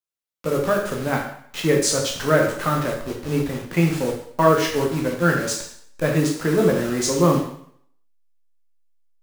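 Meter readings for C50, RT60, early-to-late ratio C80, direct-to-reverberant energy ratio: 5.0 dB, 0.65 s, 8.5 dB, -1.0 dB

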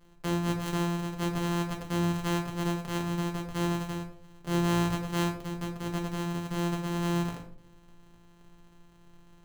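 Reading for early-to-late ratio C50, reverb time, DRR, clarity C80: 8.5 dB, 0.60 s, 0.5 dB, 11.5 dB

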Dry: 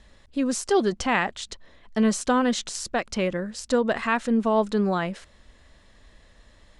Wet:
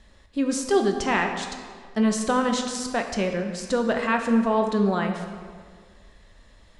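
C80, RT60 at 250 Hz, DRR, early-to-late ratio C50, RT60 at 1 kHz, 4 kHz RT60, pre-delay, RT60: 7.5 dB, 1.8 s, 4.0 dB, 6.0 dB, 1.8 s, 1.2 s, 6 ms, 1.8 s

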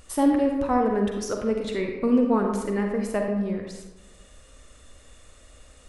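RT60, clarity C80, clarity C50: 1.1 s, 5.5 dB, 3.5 dB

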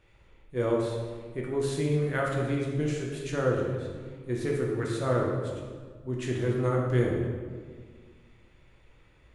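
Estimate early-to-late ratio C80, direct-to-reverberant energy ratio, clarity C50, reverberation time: 4.0 dB, -2.5 dB, 1.5 dB, 1.7 s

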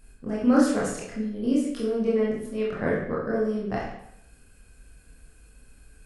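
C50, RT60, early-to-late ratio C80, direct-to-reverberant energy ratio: 2.5 dB, 0.75 s, 6.0 dB, -6.0 dB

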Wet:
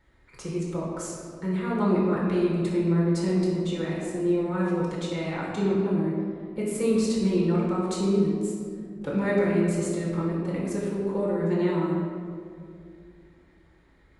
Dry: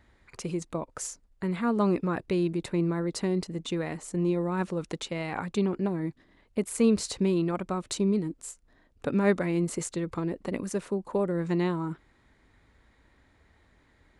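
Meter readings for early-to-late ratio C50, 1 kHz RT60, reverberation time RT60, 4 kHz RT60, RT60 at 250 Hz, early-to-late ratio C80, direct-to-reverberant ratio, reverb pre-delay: -0.5 dB, 1.9 s, 2.3 s, 1.2 s, 3.0 s, 1.5 dB, -6.0 dB, 5 ms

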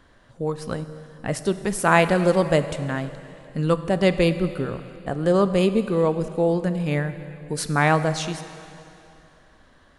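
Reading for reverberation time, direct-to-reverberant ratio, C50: 2.8 s, 11.0 dB, 12.0 dB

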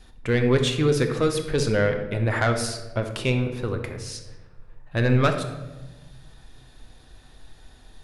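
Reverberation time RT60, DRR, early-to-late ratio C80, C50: 1.1 s, 5.0 dB, 10.0 dB, 7.5 dB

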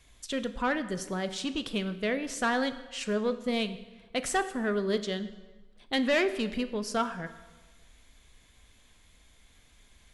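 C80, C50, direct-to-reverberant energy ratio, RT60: 15.0 dB, 13.0 dB, 10.5 dB, 1.3 s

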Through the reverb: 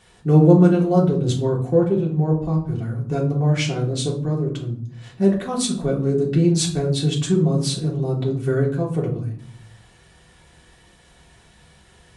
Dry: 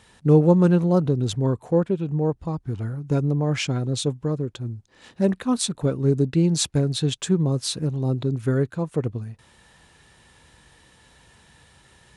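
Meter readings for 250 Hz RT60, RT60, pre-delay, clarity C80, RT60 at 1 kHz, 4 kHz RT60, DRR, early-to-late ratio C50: 0.90 s, 0.55 s, 3 ms, 13.5 dB, 0.55 s, 0.35 s, -4.0 dB, 9.0 dB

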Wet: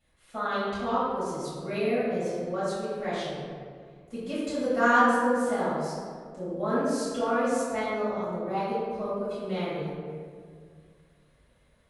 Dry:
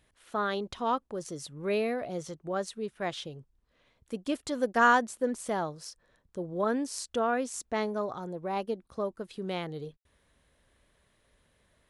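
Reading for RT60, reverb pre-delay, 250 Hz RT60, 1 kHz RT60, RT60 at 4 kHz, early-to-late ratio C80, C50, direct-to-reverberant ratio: 2.1 s, 5 ms, 2.4 s, 1.8 s, 1.0 s, -0.5 dB, -3.5 dB, -13.0 dB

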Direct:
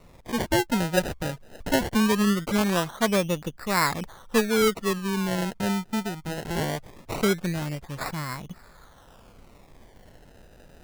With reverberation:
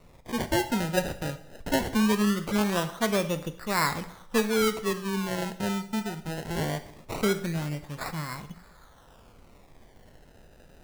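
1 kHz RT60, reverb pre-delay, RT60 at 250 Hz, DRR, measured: 0.70 s, 6 ms, 0.75 s, 9.5 dB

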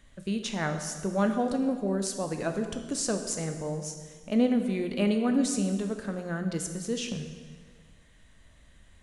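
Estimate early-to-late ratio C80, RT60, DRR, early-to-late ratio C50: 9.0 dB, 1.6 s, 6.0 dB, 7.5 dB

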